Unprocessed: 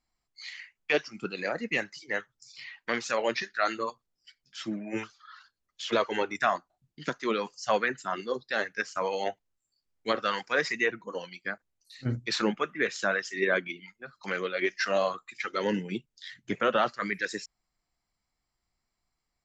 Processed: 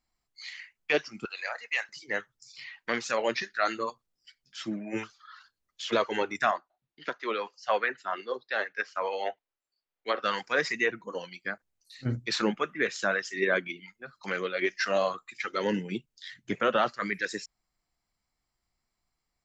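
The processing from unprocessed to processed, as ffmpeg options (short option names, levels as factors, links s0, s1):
-filter_complex "[0:a]asettb=1/sr,asplit=3[s0][s1][s2];[s0]atrim=end=1.254[s3];[s1]atrim=start=1.25:end=1.89,asetpts=PTS-STARTPTS,afade=t=in:d=0.004:c=qsin,afade=t=out:st=0.636:d=0.004:c=qsin,highpass=f=760:w=0.5412,highpass=f=760:w=1.3066[s4];[s2]atrim=start=1.886[s5];[s3][s4]acrossfade=d=0.004:c1=hsin:c2=qsin[s6];[s6][s5]acrossfade=d=0.004:c1=qsin:c2=hsin,asettb=1/sr,asplit=3[s7][s8][s9];[s7]atrim=end=6.514[s10];[s8]atrim=start=6.51:end=10.24,asetpts=PTS-STARTPTS,afade=t=in:d=0.004:c=qsin,afade=t=out:st=3.726:d=0.004:c=qsin,acrossover=split=360 4500:gain=0.141 1 0.0708[s11][s12][s13];[s11][s12][s13]amix=inputs=3:normalize=0[s14];[s9]atrim=start=10.236[s15];[s10][s14]acrossfade=d=0.004:c1=hsin:c2=qsin[s16];[s16][s15]acrossfade=d=0.004:c1=qsin:c2=hsin"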